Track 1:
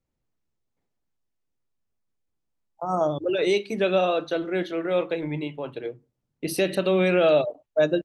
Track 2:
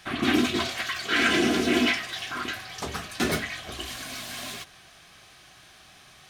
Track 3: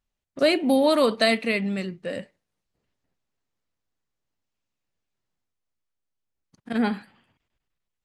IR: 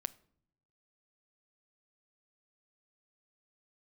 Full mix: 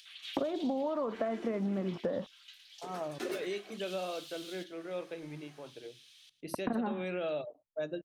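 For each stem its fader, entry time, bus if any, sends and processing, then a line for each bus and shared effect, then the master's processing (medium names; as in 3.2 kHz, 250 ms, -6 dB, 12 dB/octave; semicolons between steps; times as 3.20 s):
-15.0 dB, 0.00 s, no send, no echo send, none
-16.0 dB, 0.00 s, no send, echo send -16.5 dB, upward compressor, threshold -37 dBFS; LFO high-pass square 0.53 Hz 370–3300 Hz; auto duck -11 dB, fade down 1.20 s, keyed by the third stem
+2.5 dB, 0.00 s, no send, no echo send, bit crusher 8-bit; four-pole ladder low-pass 1.3 kHz, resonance 35%; three bands compressed up and down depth 100%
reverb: none
echo: feedback delay 111 ms, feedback 25%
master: compression 6:1, threshold -30 dBFS, peak gain reduction 10 dB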